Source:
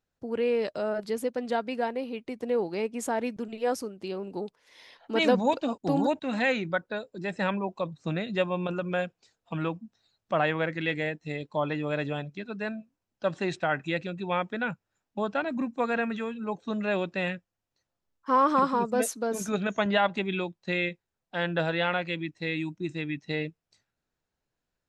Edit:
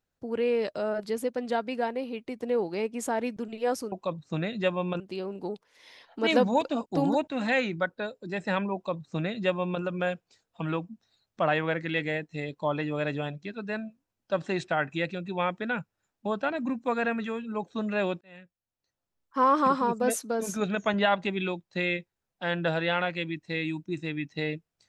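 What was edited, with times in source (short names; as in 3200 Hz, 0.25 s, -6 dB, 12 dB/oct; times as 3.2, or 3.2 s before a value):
7.66–8.74 copy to 3.92
17.13–18.32 fade in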